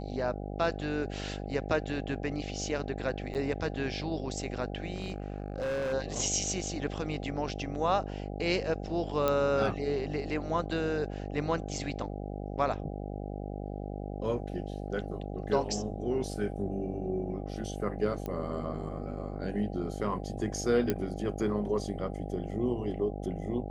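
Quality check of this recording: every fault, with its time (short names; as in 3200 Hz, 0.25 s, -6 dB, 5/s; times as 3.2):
buzz 50 Hz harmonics 16 -38 dBFS
3.34–3.35 gap 8.7 ms
4.94–5.94 clipped -29.5 dBFS
9.28 pop -14 dBFS
18.26 pop -23 dBFS
20.9 pop -15 dBFS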